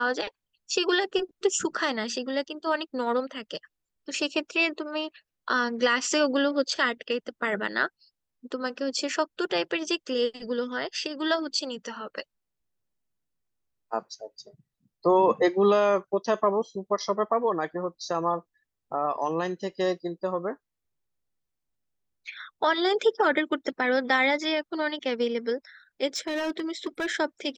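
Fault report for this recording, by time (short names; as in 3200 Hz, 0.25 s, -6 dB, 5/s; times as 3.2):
26.16–27.11 clipped -24.5 dBFS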